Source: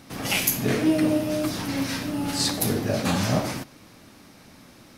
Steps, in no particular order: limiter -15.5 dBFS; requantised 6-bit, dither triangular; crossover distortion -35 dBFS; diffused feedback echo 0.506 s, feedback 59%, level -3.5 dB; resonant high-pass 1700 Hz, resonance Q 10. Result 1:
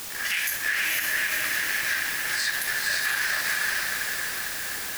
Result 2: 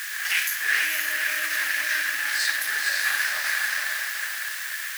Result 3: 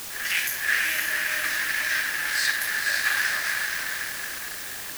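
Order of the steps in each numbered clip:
resonant high-pass > crossover distortion > requantised > diffused feedback echo > limiter; diffused feedback echo > crossover distortion > limiter > requantised > resonant high-pass; limiter > diffused feedback echo > crossover distortion > resonant high-pass > requantised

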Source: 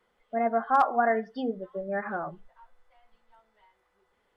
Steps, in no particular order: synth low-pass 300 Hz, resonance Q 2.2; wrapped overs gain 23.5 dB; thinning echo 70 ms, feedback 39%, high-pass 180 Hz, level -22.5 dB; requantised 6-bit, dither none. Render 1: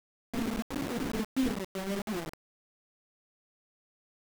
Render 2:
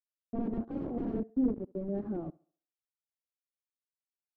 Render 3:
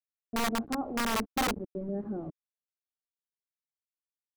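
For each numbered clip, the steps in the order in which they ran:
thinning echo > wrapped overs > synth low-pass > requantised; requantised > thinning echo > wrapped overs > synth low-pass; thinning echo > requantised > synth low-pass > wrapped overs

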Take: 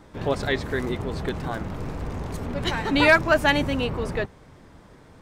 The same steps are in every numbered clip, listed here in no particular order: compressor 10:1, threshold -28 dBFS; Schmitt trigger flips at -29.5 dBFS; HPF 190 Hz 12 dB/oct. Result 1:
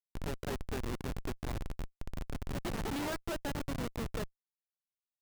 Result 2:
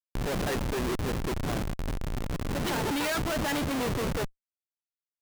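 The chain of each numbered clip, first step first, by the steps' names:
compressor > HPF > Schmitt trigger; HPF > Schmitt trigger > compressor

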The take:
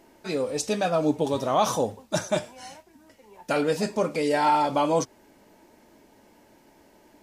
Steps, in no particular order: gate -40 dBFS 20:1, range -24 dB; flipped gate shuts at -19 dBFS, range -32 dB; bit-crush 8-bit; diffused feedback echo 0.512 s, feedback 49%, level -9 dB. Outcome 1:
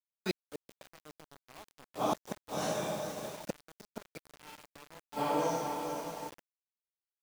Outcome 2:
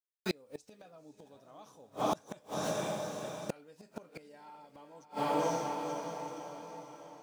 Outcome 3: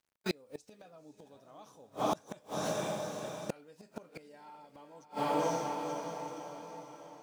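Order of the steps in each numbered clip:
diffused feedback echo > gate > flipped gate > bit-crush; gate > bit-crush > diffused feedback echo > flipped gate; bit-crush > gate > diffused feedback echo > flipped gate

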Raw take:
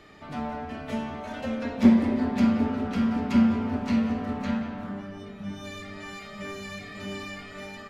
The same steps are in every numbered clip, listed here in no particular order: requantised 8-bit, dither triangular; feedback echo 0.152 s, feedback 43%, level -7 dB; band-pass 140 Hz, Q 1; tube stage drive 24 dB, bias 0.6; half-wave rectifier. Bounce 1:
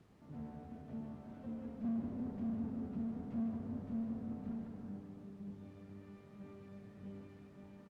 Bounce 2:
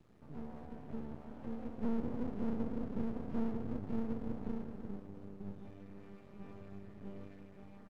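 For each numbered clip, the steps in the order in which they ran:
tube stage > half-wave rectifier > feedback echo > requantised > band-pass; tube stage > feedback echo > requantised > band-pass > half-wave rectifier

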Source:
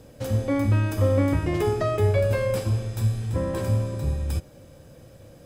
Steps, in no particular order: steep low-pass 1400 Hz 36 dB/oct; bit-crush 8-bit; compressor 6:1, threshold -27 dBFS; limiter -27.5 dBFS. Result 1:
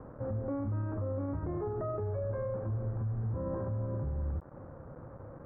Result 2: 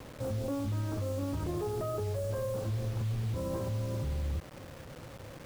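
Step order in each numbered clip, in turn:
compressor > limiter > bit-crush > steep low-pass; steep low-pass > limiter > compressor > bit-crush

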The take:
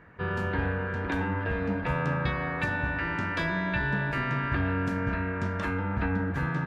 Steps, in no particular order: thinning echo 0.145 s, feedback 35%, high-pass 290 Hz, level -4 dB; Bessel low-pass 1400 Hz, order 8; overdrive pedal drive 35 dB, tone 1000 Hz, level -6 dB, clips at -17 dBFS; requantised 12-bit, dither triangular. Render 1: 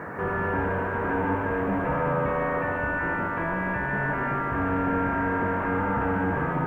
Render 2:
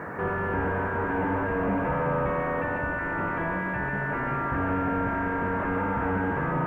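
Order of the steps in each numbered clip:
overdrive pedal > Bessel low-pass > requantised > thinning echo; thinning echo > overdrive pedal > Bessel low-pass > requantised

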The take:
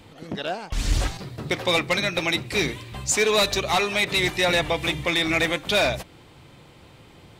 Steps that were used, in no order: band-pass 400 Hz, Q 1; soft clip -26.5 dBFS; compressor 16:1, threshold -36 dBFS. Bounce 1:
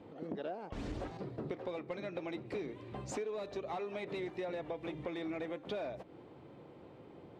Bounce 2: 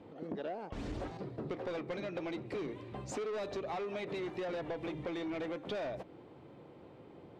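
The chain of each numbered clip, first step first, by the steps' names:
band-pass > compressor > soft clip; band-pass > soft clip > compressor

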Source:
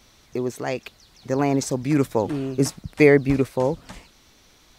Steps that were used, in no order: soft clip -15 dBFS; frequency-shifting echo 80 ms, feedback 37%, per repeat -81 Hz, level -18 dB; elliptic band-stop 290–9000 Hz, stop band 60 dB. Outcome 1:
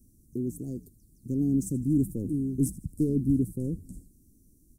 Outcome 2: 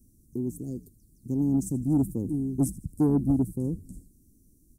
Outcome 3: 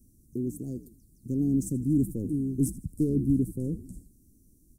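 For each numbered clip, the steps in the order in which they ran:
soft clip > elliptic band-stop > frequency-shifting echo; elliptic band-stop > frequency-shifting echo > soft clip; frequency-shifting echo > soft clip > elliptic band-stop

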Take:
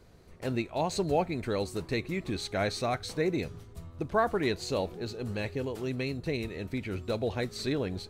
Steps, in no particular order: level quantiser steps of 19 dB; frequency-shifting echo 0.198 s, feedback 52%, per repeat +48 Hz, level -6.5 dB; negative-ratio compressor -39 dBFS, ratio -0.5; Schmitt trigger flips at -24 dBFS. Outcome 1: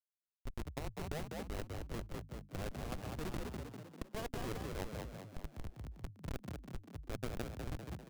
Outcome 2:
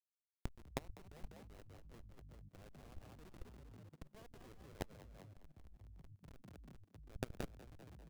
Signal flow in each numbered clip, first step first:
Schmitt trigger > level quantiser > frequency-shifting echo > negative-ratio compressor; Schmitt trigger > negative-ratio compressor > frequency-shifting echo > level quantiser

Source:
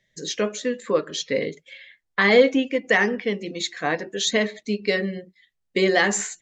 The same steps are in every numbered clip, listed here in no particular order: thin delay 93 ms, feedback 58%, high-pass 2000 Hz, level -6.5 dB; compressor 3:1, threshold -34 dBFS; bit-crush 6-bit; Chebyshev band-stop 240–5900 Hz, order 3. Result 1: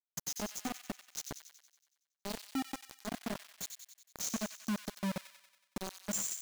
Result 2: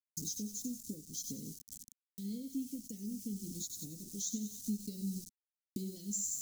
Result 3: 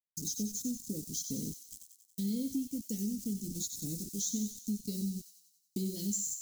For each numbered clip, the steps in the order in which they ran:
compressor > Chebyshev band-stop > bit-crush > thin delay; thin delay > bit-crush > compressor > Chebyshev band-stop; bit-crush > Chebyshev band-stop > compressor > thin delay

